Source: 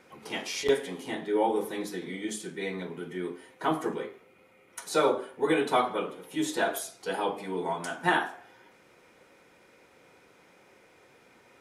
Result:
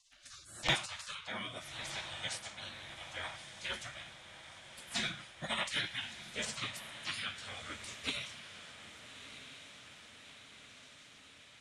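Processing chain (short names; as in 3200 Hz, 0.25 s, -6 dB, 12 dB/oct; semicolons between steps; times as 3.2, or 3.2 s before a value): LPF 7500 Hz 24 dB/oct; spectral gate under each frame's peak -25 dB weak; in parallel at -9.5 dB: hard clip -38.5 dBFS, distortion -11 dB; on the sum: rotary speaker horn 0.8 Hz; diffused feedback echo 1.27 s, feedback 65%, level -11.5 dB; gain +8.5 dB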